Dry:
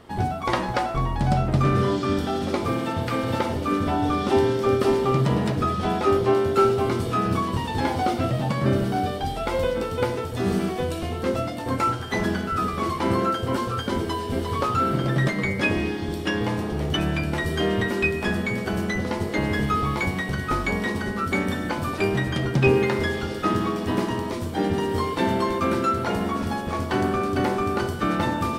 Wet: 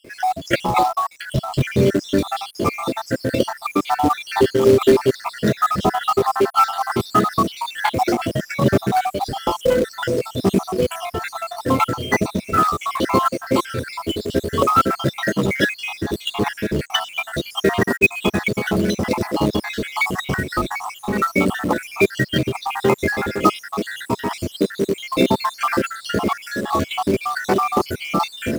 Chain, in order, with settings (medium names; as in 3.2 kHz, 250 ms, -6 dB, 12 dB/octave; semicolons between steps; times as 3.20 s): random holes in the spectrogram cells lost 68%; bass shelf 100 Hz -12 dB; in parallel at -3 dB: companded quantiser 4-bit; on the sum: trim +5.5 dB